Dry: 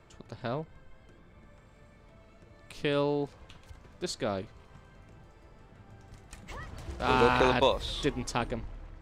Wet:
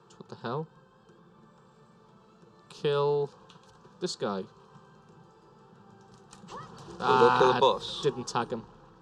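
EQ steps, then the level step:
band-pass filter 140–6,200 Hz
phaser with its sweep stopped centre 420 Hz, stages 8
+5.0 dB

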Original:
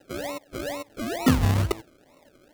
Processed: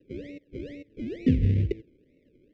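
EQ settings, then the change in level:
elliptic band-stop filter 460–2,100 Hz, stop band 60 dB
head-to-tape spacing loss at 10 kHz 42 dB
notch filter 4,300 Hz, Q 20
0.0 dB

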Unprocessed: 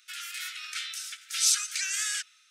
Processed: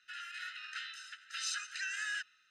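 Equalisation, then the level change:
moving average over 39 samples
high-frequency loss of the air 53 metres
+14.5 dB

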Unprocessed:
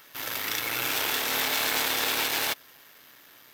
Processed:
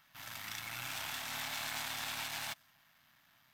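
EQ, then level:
high-shelf EQ 5,800 Hz −8.5 dB
dynamic equaliser 8,300 Hz, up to +6 dB, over −49 dBFS, Q 0.96
drawn EQ curve 190 Hz 0 dB, 450 Hz −25 dB, 670 Hz −6 dB
−6.0 dB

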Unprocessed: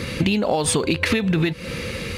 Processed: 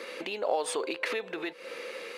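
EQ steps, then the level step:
high-pass filter 420 Hz 24 dB per octave
high-shelf EQ 2,200 Hz −9.5 dB
−5.5 dB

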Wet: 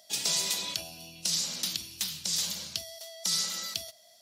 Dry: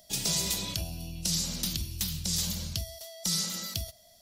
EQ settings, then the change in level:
meter weighting curve A
+1.0 dB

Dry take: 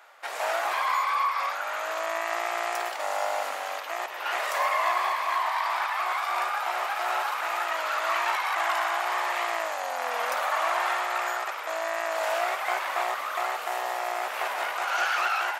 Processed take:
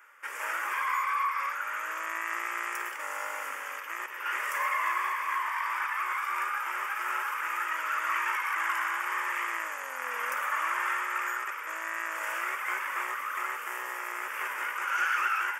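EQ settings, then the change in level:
parametric band 210 Hz −4.5 dB 0.91 octaves
phaser with its sweep stopped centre 1,700 Hz, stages 4
0.0 dB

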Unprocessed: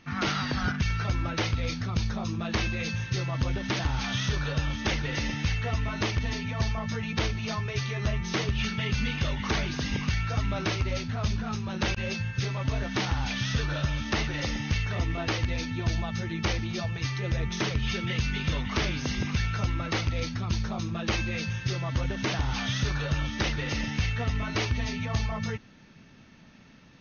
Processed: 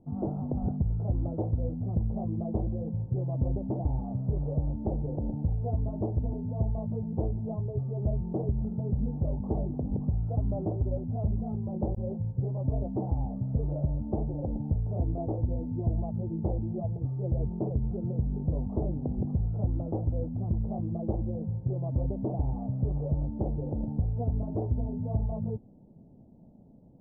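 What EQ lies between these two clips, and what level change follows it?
Butterworth low-pass 770 Hz 48 dB per octave
0.0 dB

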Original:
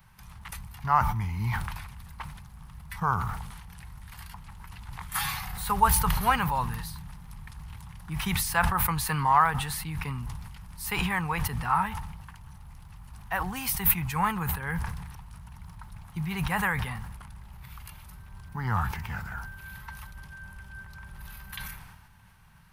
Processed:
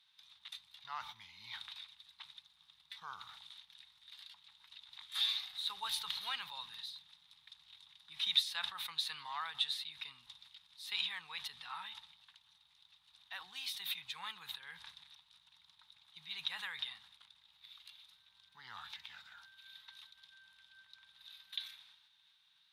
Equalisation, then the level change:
resonant band-pass 3,700 Hz, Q 14
+11.5 dB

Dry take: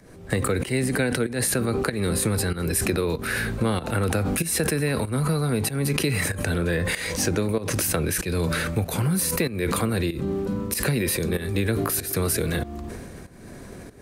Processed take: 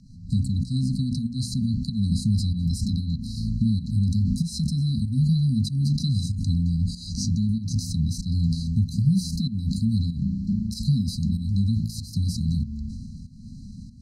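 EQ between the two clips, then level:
linear-phase brick-wall band-stop 260–3,900 Hz
high-frequency loss of the air 150 metres
mains-hum notches 60/120/180/240 Hz
+4.5 dB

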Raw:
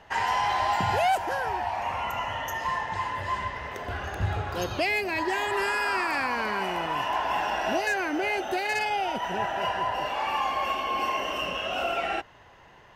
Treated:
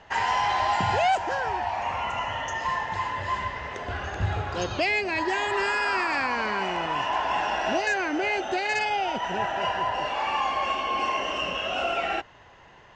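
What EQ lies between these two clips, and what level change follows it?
elliptic low-pass filter 7,400 Hz, stop band 60 dB
+2.0 dB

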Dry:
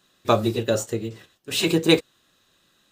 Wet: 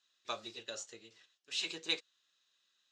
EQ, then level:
resonant band-pass 7,000 Hz, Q 1.8
high-frequency loss of the air 200 metres
+3.5 dB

